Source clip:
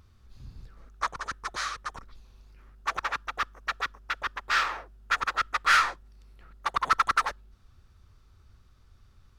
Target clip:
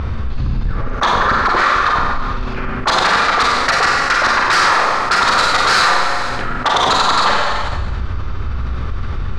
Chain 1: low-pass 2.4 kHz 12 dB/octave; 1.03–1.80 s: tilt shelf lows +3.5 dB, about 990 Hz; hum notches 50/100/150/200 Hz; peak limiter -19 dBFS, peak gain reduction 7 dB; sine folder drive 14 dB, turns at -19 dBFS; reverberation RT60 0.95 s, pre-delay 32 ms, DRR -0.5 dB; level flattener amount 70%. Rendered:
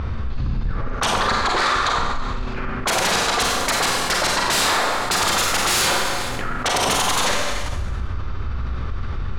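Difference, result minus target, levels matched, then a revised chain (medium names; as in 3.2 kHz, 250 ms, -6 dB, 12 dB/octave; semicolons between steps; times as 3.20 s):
sine folder: distortion +16 dB
low-pass 2.4 kHz 12 dB/octave; 1.03–1.80 s: tilt shelf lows +3.5 dB, about 990 Hz; hum notches 50/100/150/200 Hz; peak limiter -19 dBFS, peak gain reduction 7 dB; sine folder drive 14 dB, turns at -12.5 dBFS; reverberation RT60 0.95 s, pre-delay 32 ms, DRR -0.5 dB; level flattener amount 70%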